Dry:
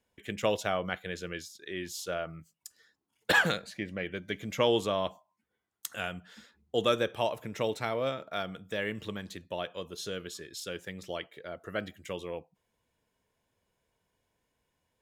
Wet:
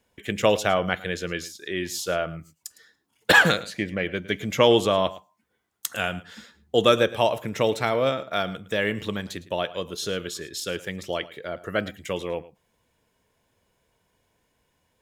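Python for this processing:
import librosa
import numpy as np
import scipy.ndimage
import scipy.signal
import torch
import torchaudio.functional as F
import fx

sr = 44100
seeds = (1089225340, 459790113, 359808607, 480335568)

y = x + 10.0 ** (-18.0 / 20.0) * np.pad(x, (int(109 * sr / 1000.0), 0))[:len(x)]
y = y * 10.0 ** (8.5 / 20.0)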